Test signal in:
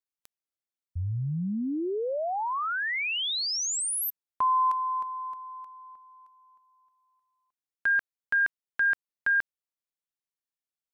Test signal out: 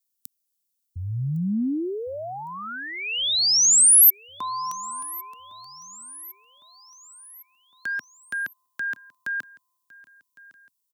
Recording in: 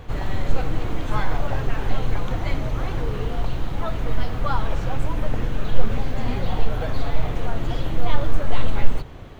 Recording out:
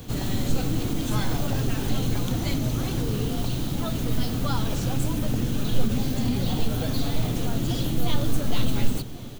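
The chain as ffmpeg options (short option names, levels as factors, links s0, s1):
-filter_complex "[0:a]equalizer=f=125:t=o:w=1:g=5,equalizer=f=250:t=o:w=1:g=9,equalizer=f=500:t=o:w=1:g=-3,equalizer=f=1000:t=o:w=1:g=-6,equalizer=f=2000:t=o:w=1:g=-8,acrossover=split=180[s0][s1];[s1]acompressor=threshold=0.0708:ratio=6:attack=1.7:release=213:knee=2.83:detection=peak[s2];[s0][s2]amix=inputs=2:normalize=0,lowshelf=f=100:g=-8.5,aecho=1:1:1108|2216|3324|4432:0.0841|0.0438|0.0228|0.0118,crystalizer=i=4.5:c=0"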